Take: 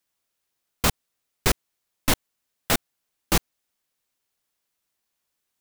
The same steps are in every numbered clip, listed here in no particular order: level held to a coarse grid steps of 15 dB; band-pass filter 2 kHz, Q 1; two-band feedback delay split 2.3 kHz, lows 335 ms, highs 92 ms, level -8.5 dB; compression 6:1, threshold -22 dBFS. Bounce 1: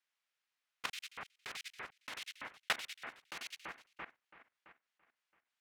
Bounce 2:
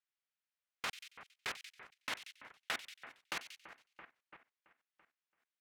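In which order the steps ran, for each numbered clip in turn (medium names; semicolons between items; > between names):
two-band feedback delay > compression > band-pass filter > level held to a coarse grid; compression > two-band feedback delay > level held to a coarse grid > band-pass filter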